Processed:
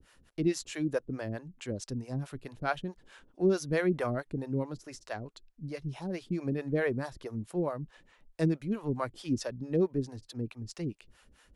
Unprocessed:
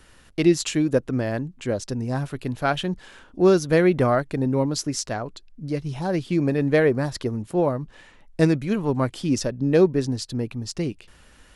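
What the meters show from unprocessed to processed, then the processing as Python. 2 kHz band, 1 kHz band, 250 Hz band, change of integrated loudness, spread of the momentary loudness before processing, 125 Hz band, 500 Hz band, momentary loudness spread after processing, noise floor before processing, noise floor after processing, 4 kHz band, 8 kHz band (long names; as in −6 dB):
−9.5 dB, −11.0 dB, −10.5 dB, −10.5 dB, 12 LU, −10.0 dB, −11.0 dB, 12 LU, −53 dBFS, −65 dBFS, −13.5 dB, −13.0 dB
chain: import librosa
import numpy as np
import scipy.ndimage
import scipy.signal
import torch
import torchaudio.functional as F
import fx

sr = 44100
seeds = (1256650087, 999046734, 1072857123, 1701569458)

y = fx.harmonic_tremolo(x, sr, hz=4.6, depth_pct=100, crossover_hz=450.0)
y = F.gain(torch.from_numpy(y), -5.5).numpy()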